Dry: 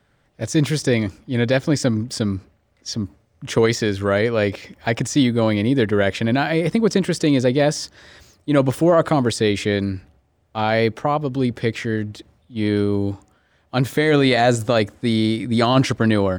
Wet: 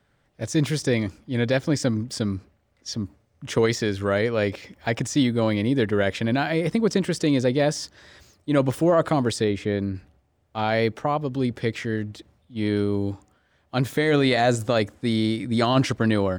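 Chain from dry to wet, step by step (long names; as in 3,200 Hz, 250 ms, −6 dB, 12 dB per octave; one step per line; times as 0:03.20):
0:09.44–0:09.95: high-shelf EQ 2,100 Hz −11.5 dB
level −4 dB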